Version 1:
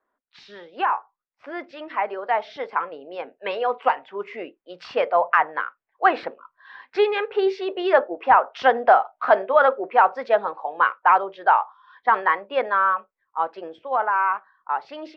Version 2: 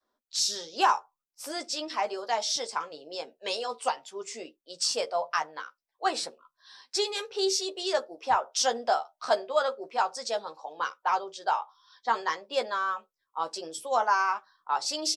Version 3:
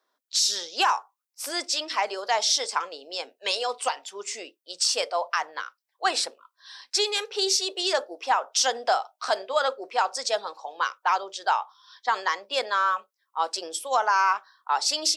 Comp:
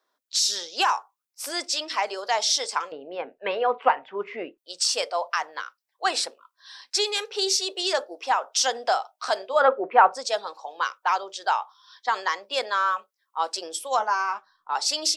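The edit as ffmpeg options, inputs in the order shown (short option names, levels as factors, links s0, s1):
-filter_complex "[0:a]asplit=2[s0][s1];[2:a]asplit=4[s2][s3][s4][s5];[s2]atrim=end=2.922[s6];[s0]atrim=start=2.918:end=4.582[s7];[s3]atrim=start=4.578:end=9.68[s8];[s1]atrim=start=9.44:end=10.32[s9];[s4]atrim=start=10.08:end=13.992[s10];[1:a]atrim=start=13.988:end=14.752[s11];[s5]atrim=start=14.748[s12];[s6][s7]acrossfade=d=0.004:c1=hsin:c2=hsin[s13];[s13][s8]acrossfade=d=0.004:c1=hsin:c2=hsin[s14];[s14][s9]acrossfade=d=0.24:c1=tri:c2=tri[s15];[s15][s10]acrossfade=d=0.24:c1=tri:c2=tri[s16];[s16][s11]acrossfade=d=0.004:c1=hsin:c2=hsin[s17];[s17][s12]acrossfade=d=0.004:c1=hsin:c2=hsin"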